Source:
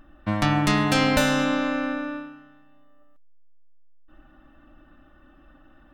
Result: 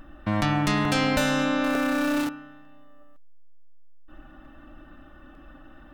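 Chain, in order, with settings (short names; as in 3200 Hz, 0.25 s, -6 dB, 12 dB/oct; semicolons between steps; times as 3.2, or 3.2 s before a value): 1.64–2.29 zero-crossing step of -30.5 dBFS; in parallel at +1.5 dB: negative-ratio compressor -29 dBFS, ratio -1; on the sum: vibrato 0.88 Hz 6.7 cents; crackling interface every 0.90 s, samples 64, repeat, from 0.85; gain -5 dB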